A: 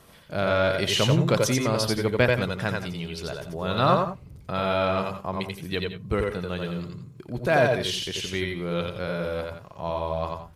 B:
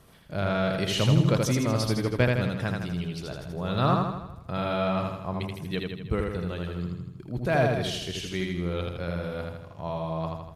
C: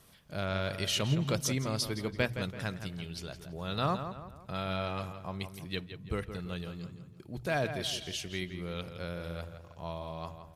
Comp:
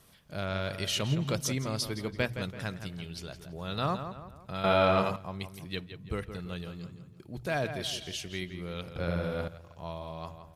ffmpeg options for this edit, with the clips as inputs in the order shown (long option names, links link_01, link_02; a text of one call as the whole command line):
ffmpeg -i take0.wav -i take1.wav -i take2.wav -filter_complex "[2:a]asplit=3[link_01][link_02][link_03];[link_01]atrim=end=4.642[link_04];[0:a]atrim=start=4.638:end=5.162[link_05];[link_02]atrim=start=5.158:end=8.962[link_06];[1:a]atrim=start=8.958:end=9.482[link_07];[link_03]atrim=start=9.478[link_08];[link_04][link_05]acrossfade=duration=0.004:curve1=hsin:curve2=hsin[link_09];[link_09][link_06]acrossfade=duration=0.004:curve1=hsin:curve2=hsin[link_10];[link_10][link_07]acrossfade=duration=0.004:curve1=hsin:curve2=hsin[link_11];[link_11][link_08]acrossfade=duration=0.004:curve1=hsin:curve2=hsin" out.wav